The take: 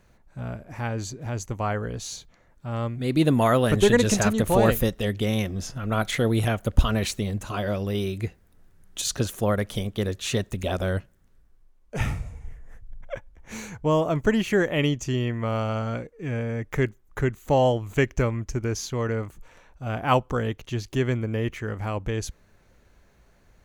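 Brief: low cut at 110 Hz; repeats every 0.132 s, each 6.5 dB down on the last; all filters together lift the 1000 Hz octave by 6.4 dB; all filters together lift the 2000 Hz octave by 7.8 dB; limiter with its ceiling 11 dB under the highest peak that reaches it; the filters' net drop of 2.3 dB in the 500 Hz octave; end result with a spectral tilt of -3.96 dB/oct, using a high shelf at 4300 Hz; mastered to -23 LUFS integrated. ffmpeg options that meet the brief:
-af "highpass=110,equalizer=f=500:t=o:g=-5.5,equalizer=f=1k:t=o:g=8,equalizer=f=2k:t=o:g=6,highshelf=f=4.3k:g=7,alimiter=limit=-12dB:level=0:latency=1,aecho=1:1:132|264|396|528|660|792:0.473|0.222|0.105|0.0491|0.0231|0.0109,volume=2dB"

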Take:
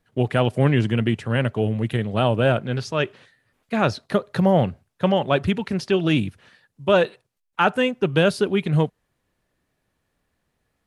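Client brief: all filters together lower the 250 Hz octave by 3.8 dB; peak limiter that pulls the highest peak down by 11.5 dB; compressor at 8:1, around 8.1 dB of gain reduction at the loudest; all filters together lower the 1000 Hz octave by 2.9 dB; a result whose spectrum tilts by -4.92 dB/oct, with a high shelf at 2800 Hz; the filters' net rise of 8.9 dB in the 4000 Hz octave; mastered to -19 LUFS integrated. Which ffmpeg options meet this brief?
-af "equalizer=f=250:t=o:g=-5.5,equalizer=f=1k:t=o:g=-5.5,highshelf=f=2.8k:g=8,equalizer=f=4k:t=o:g=6.5,acompressor=threshold=-22dB:ratio=8,volume=13dB,alimiter=limit=-7.5dB:level=0:latency=1"

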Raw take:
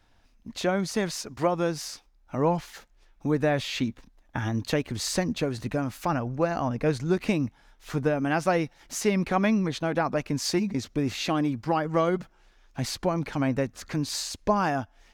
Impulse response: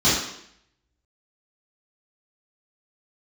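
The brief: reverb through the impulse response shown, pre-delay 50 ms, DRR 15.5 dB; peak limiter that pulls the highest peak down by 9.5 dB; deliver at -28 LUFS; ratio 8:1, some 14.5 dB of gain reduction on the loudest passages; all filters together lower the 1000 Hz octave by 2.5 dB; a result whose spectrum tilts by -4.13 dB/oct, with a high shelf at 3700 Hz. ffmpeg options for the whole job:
-filter_complex "[0:a]equalizer=f=1k:t=o:g=-4,highshelf=f=3.7k:g=7,acompressor=threshold=-35dB:ratio=8,alimiter=level_in=7dB:limit=-24dB:level=0:latency=1,volume=-7dB,asplit=2[a][b];[1:a]atrim=start_sample=2205,adelay=50[c];[b][c]afir=irnorm=-1:irlink=0,volume=-34.5dB[d];[a][d]amix=inputs=2:normalize=0,volume=13dB"

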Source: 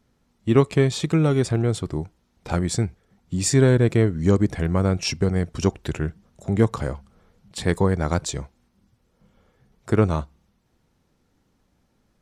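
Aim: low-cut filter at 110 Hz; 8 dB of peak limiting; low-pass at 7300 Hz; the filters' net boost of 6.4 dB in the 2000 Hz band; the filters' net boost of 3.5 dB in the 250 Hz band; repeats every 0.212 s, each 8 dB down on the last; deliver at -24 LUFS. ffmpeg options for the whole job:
-af "highpass=110,lowpass=7.3k,equalizer=f=250:t=o:g=5,equalizer=f=2k:t=o:g=8,alimiter=limit=-9dB:level=0:latency=1,aecho=1:1:212|424|636|848|1060:0.398|0.159|0.0637|0.0255|0.0102,volume=-1dB"

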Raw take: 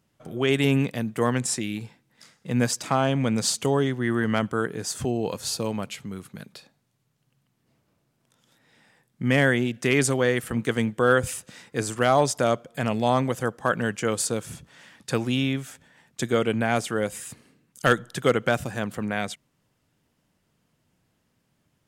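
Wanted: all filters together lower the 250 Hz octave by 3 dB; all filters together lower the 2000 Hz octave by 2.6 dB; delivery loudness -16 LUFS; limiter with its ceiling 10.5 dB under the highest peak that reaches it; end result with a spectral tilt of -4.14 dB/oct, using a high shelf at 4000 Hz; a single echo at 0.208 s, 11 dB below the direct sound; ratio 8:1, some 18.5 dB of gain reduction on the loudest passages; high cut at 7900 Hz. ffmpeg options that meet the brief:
-af "lowpass=7.9k,equalizer=f=250:t=o:g=-3.5,equalizer=f=2k:t=o:g=-4.5,highshelf=f=4k:g=5,acompressor=threshold=-35dB:ratio=8,alimiter=level_in=6dB:limit=-24dB:level=0:latency=1,volume=-6dB,aecho=1:1:208:0.282,volume=26dB"

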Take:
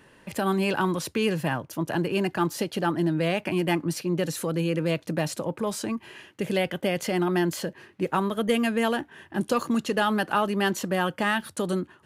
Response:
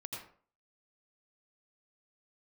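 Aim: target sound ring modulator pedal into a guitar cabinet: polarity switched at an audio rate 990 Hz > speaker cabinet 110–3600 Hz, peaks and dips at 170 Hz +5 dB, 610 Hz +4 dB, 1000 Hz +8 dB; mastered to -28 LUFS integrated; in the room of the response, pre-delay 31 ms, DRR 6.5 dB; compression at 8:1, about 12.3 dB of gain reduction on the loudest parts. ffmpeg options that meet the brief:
-filter_complex "[0:a]acompressor=threshold=-32dB:ratio=8,asplit=2[a][b];[1:a]atrim=start_sample=2205,adelay=31[c];[b][c]afir=irnorm=-1:irlink=0,volume=-5.5dB[d];[a][d]amix=inputs=2:normalize=0,aeval=exprs='val(0)*sgn(sin(2*PI*990*n/s))':c=same,highpass=110,equalizer=f=170:t=q:w=4:g=5,equalizer=f=610:t=q:w=4:g=4,equalizer=f=1k:t=q:w=4:g=8,lowpass=f=3.6k:w=0.5412,lowpass=f=3.6k:w=1.3066,volume=5.5dB"

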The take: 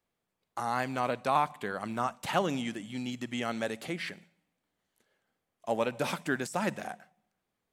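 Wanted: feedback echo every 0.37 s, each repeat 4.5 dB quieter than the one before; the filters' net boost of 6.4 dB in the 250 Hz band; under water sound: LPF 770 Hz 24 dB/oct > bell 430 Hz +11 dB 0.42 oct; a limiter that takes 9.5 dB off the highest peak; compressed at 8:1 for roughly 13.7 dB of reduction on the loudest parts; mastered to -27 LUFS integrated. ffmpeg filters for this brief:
-af "equalizer=f=250:t=o:g=6,acompressor=threshold=-36dB:ratio=8,alimiter=level_in=8dB:limit=-24dB:level=0:latency=1,volume=-8dB,lowpass=f=770:w=0.5412,lowpass=f=770:w=1.3066,equalizer=f=430:t=o:w=0.42:g=11,aecho=1:1:370|740|1110|1480|1850|2220|2590|2960|3330:0.596|0.357|0.214|0.129|0.0772|0.0463|0.0278|0.0167|0.01,volume=14.5dB"

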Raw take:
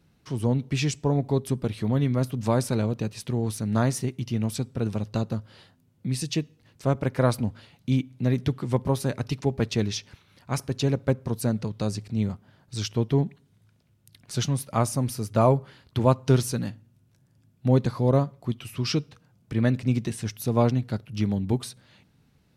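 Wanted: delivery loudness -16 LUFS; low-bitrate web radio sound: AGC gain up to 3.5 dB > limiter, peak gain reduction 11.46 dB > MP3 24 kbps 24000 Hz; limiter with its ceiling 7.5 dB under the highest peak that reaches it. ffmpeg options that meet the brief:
-af "alimiter=limit=-14dB:level=0:latency=1,dynaudnorm=m=3.5dB,alimiter=limit=-22.5dB:level=0:latency=1,volume=17.5dB" -ar 24000 -c:a libmp3lame -b:a 24k

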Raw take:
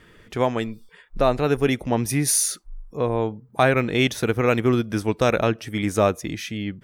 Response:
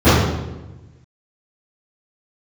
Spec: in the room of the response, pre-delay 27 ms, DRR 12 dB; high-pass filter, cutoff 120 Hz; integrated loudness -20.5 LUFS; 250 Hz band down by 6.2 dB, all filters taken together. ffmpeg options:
-filter_complex "[0:a]highpass=120,equalizer=f=250:t=o:g=-7.5,asplit=2[a][b];[1:a]atrim=start_sample=2205,adelay=27[c];[b][c]afir=irnorm=-1:irlink=0,volume=-41dB[d];[a][d]amix=inputs=2:normalize=0,volume=2.5dB"

